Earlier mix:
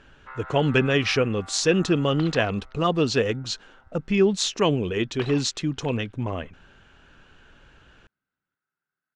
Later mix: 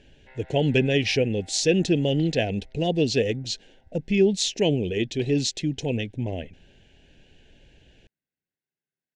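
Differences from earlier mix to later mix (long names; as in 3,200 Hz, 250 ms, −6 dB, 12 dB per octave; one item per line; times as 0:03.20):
second sound −6.5 dB
master: add Butterworth band-reject 1,200 Hz, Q 0.93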